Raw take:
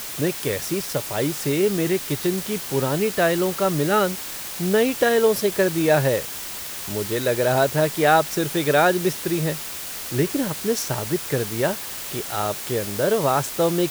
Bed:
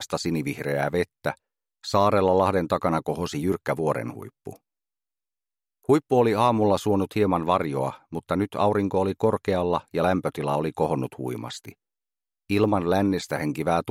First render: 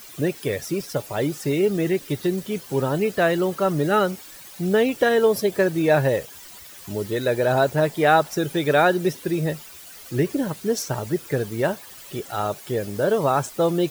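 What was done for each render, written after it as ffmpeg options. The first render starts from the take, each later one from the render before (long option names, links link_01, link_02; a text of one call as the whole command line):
ffmpeg -i in.wav -af "afftdn=noise_reduction=13:noise_floor=-33" out.wav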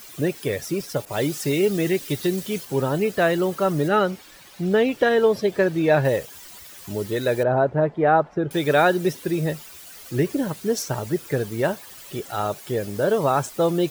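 ffmpeg -i in.wav -filter_complex "[0:a]asettb=1/sr,asplit=3[link_01][link_02][link_03];[link_01]atrim=end=1.054[link_04];[link_02]atrim=start=1.05:end=2.65,asetpts=PTS-STARTPTS,afade=type=in:duration=0.004:curve=qsin,afade=type=out:start_time=1.596:duration=0.004:curve=qsin,adynamicequalizer=threshold=0.00631:dfrequency=2100:dqfactor=0.7:tfrequency=2100:tqfactor=0.7:attack=5:release=100:ratio=0.375:range=2.5:mode=boostabove:tftype=highshelf[link_05];[link_03]atrim=start=2.646[link_06];[link_04][link_05]acrossfade=duration=0.004:curve1=hsin:curve2=qsin[link_07];[link_07][link_06]acrossfade=duration=0.004:curve1=qsin:curve2=hsin,asettb=1/sr,asplit=3[link_08][link_09][link_10];[link_08]atrim=end=3.884[link_11];[link_09]atrim=start=3.88:end=6.05,asetpts=PTS-STARTPTS,afade=type=in:duration=0.004:curve=qsin,afade=type=out:start_time=2.166:duration=0.004:curve=qsin,acrossover=split=5200[link_12][link_13];[link_13]acompressor=threshold=-49dB:ratio=4:attack=1:release=60[link_14];[link_12][link_14]amix=inputs=2:normalize=0[link_15];[link_10]atrim=start=6.046[link_16];[link_11][link_15]acrossfade=duration=0.004:curve1=hsin:curve2=qsin[link_17];[link_17][link_16]acrossfade=duration=0.004:curve1=qsin:curve2=hsin,asettb=1/sr,asplit=3[link_18][link_19][link_20];[link_18]atrim=end=7.434[link_21];[link_19]atrim=start=7.43:end=8.51,asetpts=PTS-STARTPTS,afade=type=in:duration=0.004:curve=qsin,afade=type=out:start_time=1.076:duration=0.004:curve=qsin,lowpass=1300[link_22];[link_20]atrim=start=8.506[link_23];[link_21][link_22]acrossfade=duration=0.004:curve1=hsin:curve2=qsin[link_24];[link_24][link_23]acrossfade=duration=0.004:curve1=qsin:curve2=hsin" out.wav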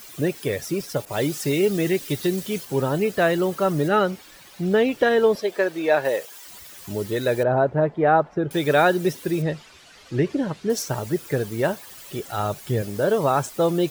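ffmpeg -i in.wav -filter_complex "[0:a]asettb=1/sr,asplit=3[link_01][link_02][link_03];[link_01]atrim=end=5.354[link_04];[link_02]atrim=start=5.35:end=6.48,asetpts=PTS-STARTPTS,afade=type=in:duration=0.004:curve=qsin,afade=type=out:start_time=1.126:duration=0.004:curve=qsin,highpass=400[link_05];[link_03]atrim=start=6.476[link_06];[link_04][link_05]acrossfade=duration=0.004:curve1=hsin:curve2=qsin[link_07];[link_07][link_06]acrossfade=duration=0.004:curve1=qsin:curve2=hsin,asettb=1/sr,asplit=3[link_08][link_09][link_10];[link_08]atrim=end=9.424[link_11];[link_09]atrim=start=9.42:end=10.7,asetpts=PTS-STARTPTS,afade=type=in:duration=0.004:curve=qsin,afade=type=out:start_time=1.276:duration=0.004:curve=qsin,lowpass=4700[link_12];[link_10]atrim=start=10.696[link_13];[link_11][link_12]acrossfade=duration=0.004:curve1=hsin:curve2=qsin[link_14];[link_14][link_13]acrossfade=duration=0.004:curve1=qsin:curve2=hsin,asettb=1/sr,asplit=3[link_15][link_16][link_17];[link_15]atrim=end=12.194[link_18];[link_16]atrim=start=12.19:end=12.82,asetpts=PTS-STARTPTS,afade=type=in:duration=0.004:curve=qsin,afade=type=out:start_time=0.626:duration=0.004:curve=qsin,asubboost=boost=11.5:cutoff=220[link_19];[link_17]atrim=start=12.816[link_20];[link_18][link_19]acrossfade=duration=0.004:curve1=hsin:curve2=qsin[link_21];[link_21][link_20]acrossfade=duration=0.004:curve1=qsin:curve2=hsin" out.wav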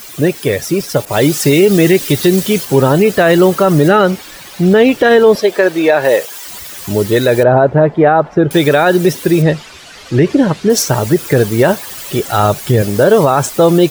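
ffmpeg -i in.wav -af "dynaudnorm=framelen=770:gausssize=3:maxgain=4.5dB,alimiter=level_in=10.5dB:limit=-1dB:release=50:level=0:latency=1" out.wav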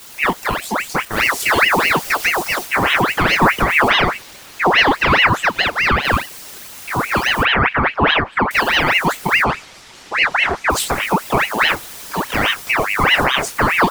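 ffmpeg -i in.wav -af "flanger=delay=20:depth=7.9:speed=0.54,aeval=exprs='val(0)*sin(2*PI*1500*n/s+1500*0.65/4.8*sin(2*PI*4.8*n/s))':channel_layout=same" out.wav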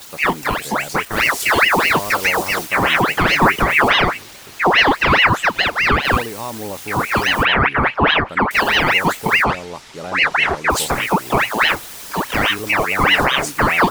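ffmpeg -i in.wav -i bed.wav -filter_complex "[1:a]volume=-8dB[link_01];[0:a][link_01]amix=inputs=2:normalize=0" out.wav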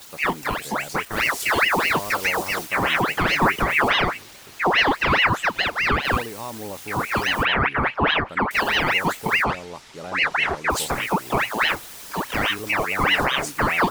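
ffmpeg -i in.wav -af "volume=-5.5dB" out.wav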